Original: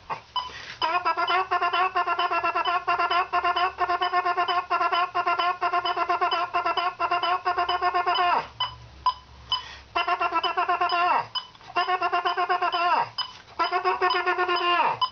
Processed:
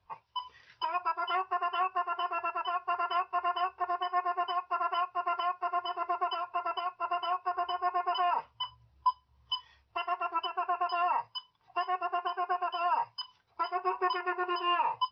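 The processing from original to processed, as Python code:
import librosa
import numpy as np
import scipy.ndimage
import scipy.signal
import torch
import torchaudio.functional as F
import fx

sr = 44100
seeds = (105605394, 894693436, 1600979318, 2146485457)

y = fx.spectral_expand(x, sr, expansion=1.5)
y = F.gain(torch.from_numpy(y), -7.5).numpy()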